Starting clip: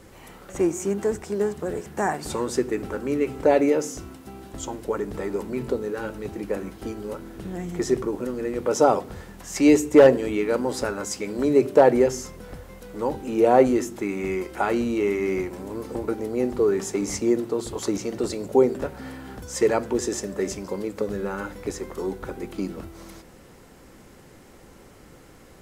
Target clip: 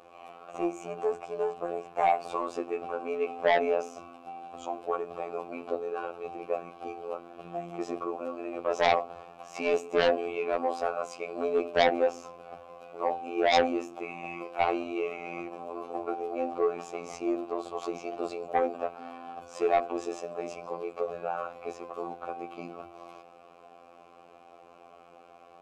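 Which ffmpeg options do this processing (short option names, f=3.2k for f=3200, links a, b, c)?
-filter_complex "[0:a]asplit=3[a][b][c];[a]bandpass=f=730:t=q:w=8,volume=0dB[d];[b]bandpass=f=1.09k:t=q:w=8,volume=-6dB[e];[c]bandpass=f=2.44k:t=q:w=8,volume=-9dB[f];[d][e][f]amix=inputs=3:normalize=0,asplit=2[g][h];[h]aeval=exprs='0.251*sin(PI/2*5.62*val(0)/0.251)':c=same,volume=-11dB[i];[g][i]amix=inputs=2:normalize=0,bandreject=f=63.73:t=h:w=4,bandreject=f=127.46:t=h:w=4,afftfilt=real='hypot(re,im)*cos(PI*b)':imag='0':win_size=2048:overlap=0.75,volume=2.5dB"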